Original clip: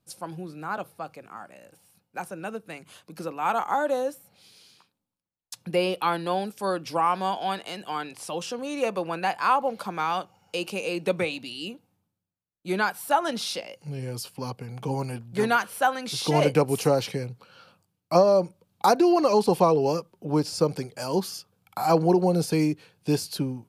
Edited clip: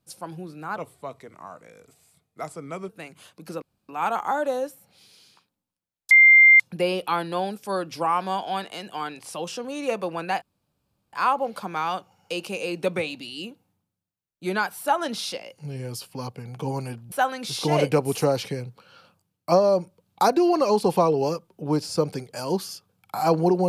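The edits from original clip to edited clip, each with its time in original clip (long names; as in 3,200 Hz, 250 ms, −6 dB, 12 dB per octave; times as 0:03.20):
0:00.76–0:02.59: play speed 86%
0:03.32: splice in room tone 0.27 s
0:05.54: insert tone 2,100 Hz −9 dBFS 0.49 s
0:09.36: splice in room tone 0.71 s
0:15.35–0:15.75: remove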